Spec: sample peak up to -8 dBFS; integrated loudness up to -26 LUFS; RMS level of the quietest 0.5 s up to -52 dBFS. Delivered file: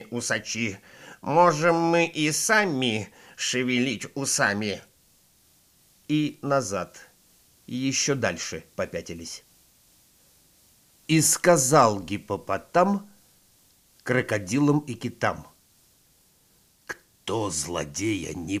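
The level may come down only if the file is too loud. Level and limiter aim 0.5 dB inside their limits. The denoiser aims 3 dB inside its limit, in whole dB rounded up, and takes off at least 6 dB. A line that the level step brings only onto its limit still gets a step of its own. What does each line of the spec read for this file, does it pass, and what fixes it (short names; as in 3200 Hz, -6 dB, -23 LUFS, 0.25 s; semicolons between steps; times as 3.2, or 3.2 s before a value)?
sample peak -4.0 dBFS: fail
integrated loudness -24.5 LUFS: fail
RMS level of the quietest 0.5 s -62 dBFS: OK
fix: gain -2 dB; limiter -8.5 dBFS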